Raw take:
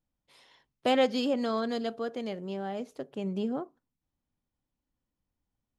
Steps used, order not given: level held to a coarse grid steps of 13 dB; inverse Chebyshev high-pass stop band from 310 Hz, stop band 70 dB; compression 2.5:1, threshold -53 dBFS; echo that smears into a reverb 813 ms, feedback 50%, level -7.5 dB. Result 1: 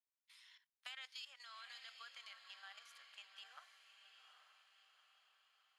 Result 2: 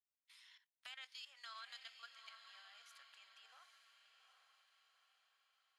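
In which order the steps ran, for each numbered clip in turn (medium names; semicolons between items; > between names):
inverse Chebyshev high-pass > level held to a coarse grid > compression > echo that smears into a reverb; inverse Chebyshev high-pass > compression > level held to a coarse grid > echo that smears into a reverb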